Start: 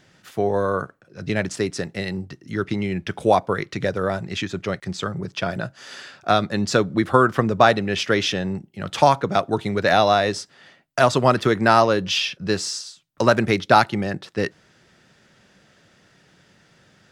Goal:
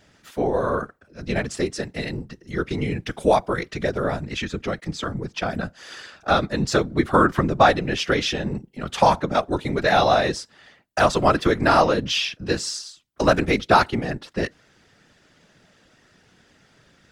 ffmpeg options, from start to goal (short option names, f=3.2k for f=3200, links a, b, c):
-filter_complex "[0:a]asettb=1/sr,asplit=3[a][b][c];[a]atrim=end=2.654[d];[b]atrim=start=2.65:end=3.71,asetpts=PTS-STARTPTS,afade=t=in:d=0.004:c=qsin,afade=t=out:st=1.056:d=0.004:c=qsin,highshelf=f=5.8k:g=5.5[e];[c]atrim=start=3.706[f];[d][e]acrossfade=d=0.004:c1=hsin:c2=qsin[g];[g][f]acrossfade=d=0.004:c1=qsin:c2=hsin,afftfilt=real='hypot(re,im)*cos(2*PI*random(0))':imag='hypot(re,im)*sin(2*PI*random(1))':win_size=512:overlap=0.75,volume=5dB"